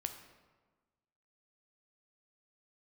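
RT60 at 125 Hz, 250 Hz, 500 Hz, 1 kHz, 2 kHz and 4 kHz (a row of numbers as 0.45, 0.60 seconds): 1.5, 1.5, 1.4, 1.4, 1.1, 0.85 seconds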